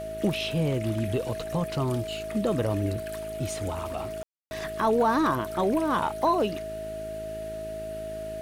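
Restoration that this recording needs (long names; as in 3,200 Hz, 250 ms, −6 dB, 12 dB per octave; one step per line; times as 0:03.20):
click removal
hum removal 53.6 Hz, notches 8
notch filter 640 Hz, Q 30
ambience match 0:04.23–0:04.51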